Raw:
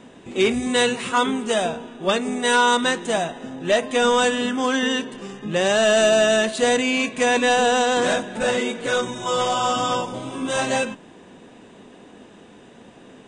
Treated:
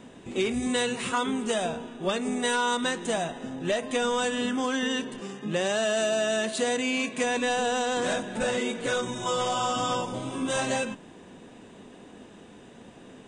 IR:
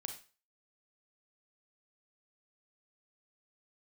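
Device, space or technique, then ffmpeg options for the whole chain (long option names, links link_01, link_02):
ASMR close-microphone chain: -filter_complex "[0:a]asettb=1/sr,asplit=3[link_01][link_02][link_03];[link_01]atrim=end=5.204[link_04];[link_02]atrim=start=5.2:end=7.24,asetpts=PTS-STARTPTS,afade=type=in:duration=0.004:curve=qsin,afade=type=out:start_time=2.036:duration=0.004:curve=qsin,highpass=150[link_05];[link_03]atrim=start=7.236[link_06];[link_04][link_05]acrossfade=duration=0.004:curve1=hsin:curve2=qsin[link_07];[link_07][link_06]acrossfade=duration=0.004:curve1=qsin:curve2=hsin,lowshelf=frequency=170:gain=4.5,acompressor=threshold=-20dB:ratio=6,highshelf=frequency=8900:gain=6,volume=-3.5dB"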